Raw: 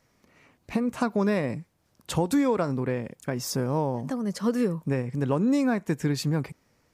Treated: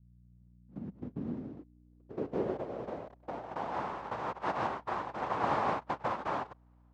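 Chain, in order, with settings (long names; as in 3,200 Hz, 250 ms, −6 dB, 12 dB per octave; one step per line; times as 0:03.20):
cochlear-implant simulation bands 1
mains hum 60 Hz, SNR 30 dB
low-pass filter sweep 160 Hz → 960 Hz, 0:00.34–0:03.89
level −5 dB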